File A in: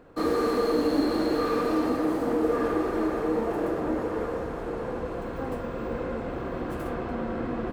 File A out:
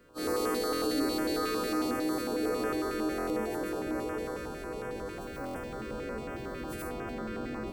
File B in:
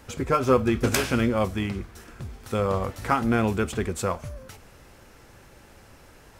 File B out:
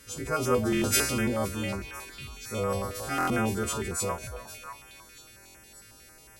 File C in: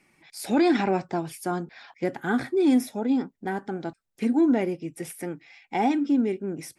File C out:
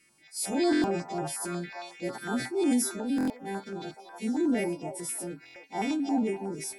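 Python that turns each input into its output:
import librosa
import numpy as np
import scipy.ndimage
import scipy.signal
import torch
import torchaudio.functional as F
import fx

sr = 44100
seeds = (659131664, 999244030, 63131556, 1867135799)

p1 = fx.freq_snap(x, sr, grid_st=2)
p2 = fx.transient(p1, sr, attack_db=-4, sustain_db=3)
p3 = p2 + fx.echo_stepped(p2, sr, ms=297, hz=710.0, octaves=0.7, feedback_pct=70, wet_db=-5, dry=0)
p4 = fx.buffer_glitch(p3, sr, at_s=(0.7, 3.16, 5.42), block=1024, repeats=5)
p5 = fx.filter_held_notch(p4, sr, hz=11.0, low_hz=810.0, high_hz=4100.0)
y = p5 * 10.0 ** (-3.5 / 20.0)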